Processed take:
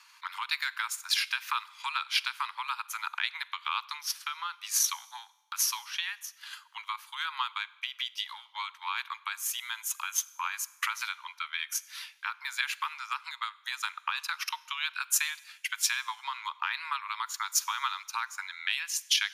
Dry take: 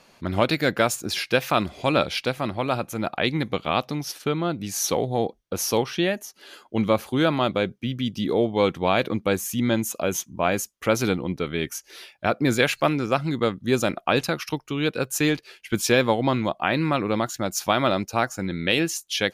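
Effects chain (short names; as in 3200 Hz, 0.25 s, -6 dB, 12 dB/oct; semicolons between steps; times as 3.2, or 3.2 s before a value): compressor 6:1, threshold -24 dBFS, peak gain reduction 10 dB; transient shaper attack +9 dB, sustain -5 dB; limiter -12.5 dBFS, peak gain reduction 10.5 dB; steep high-pass 920 Hz 96 dB/oct; Schroeder reverb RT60 1 s, combs from 32 ms, DRR 19.5 dB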